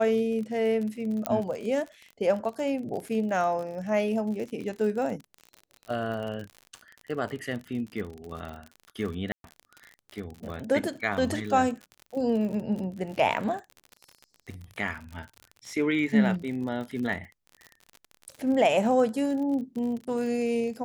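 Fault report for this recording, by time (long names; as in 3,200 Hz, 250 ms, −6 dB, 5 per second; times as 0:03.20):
surface crackle 46 per second −34 dBFS
0:01.26: click −10 dBFS
0:09.32–0:09.44: drop-out 122 ms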